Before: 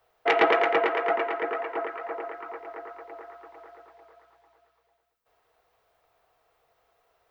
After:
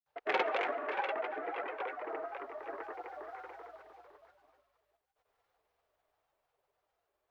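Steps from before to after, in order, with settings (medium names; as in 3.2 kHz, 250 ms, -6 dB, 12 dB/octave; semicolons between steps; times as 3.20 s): Doppler pass-by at 3.30 s, 6 m/s, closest 5.4 m; granulator, pitch spread up and down by 3 st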